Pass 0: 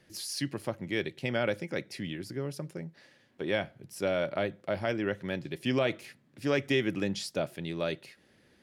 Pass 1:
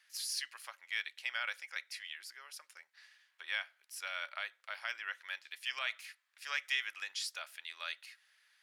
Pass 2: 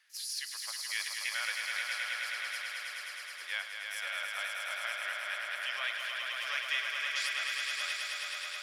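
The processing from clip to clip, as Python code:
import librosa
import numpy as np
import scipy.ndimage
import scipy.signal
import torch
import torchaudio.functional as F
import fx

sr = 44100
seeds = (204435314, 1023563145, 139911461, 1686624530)

y1 = scipy.signal.sosfilt(scipy.signal.butter(4, 1200.0, 'highpass', fs=sr, output='sos'), x)
y1 = F.gain(torch.from_numpy(y1), -1.0).numpy()
y2 = fx.echo_swell(y1, sr, ms=106, loudest=5, wet_db=-5.0)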